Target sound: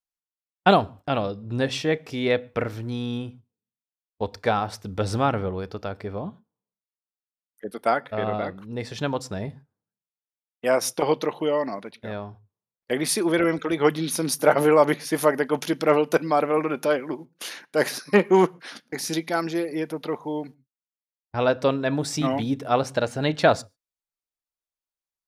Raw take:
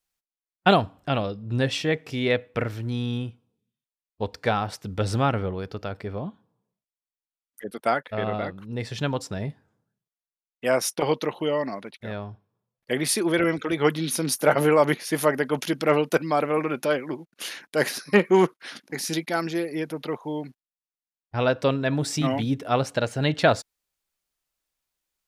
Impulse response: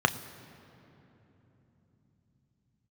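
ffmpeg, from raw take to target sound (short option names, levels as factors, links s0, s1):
-filter_complex "[0:a]agate=range=0.2:threshold=0.00631:ratio=16:detection=peak,asplit=2[s0][s1];[1:a]atrim=start_sample=2205,atrim=end_sample=6615[s2];[s1][s2]afir=irnorm=-1:irlink=0,volume=0.0562[s3];[s0][s3]amix=inputs=2:normalize=0"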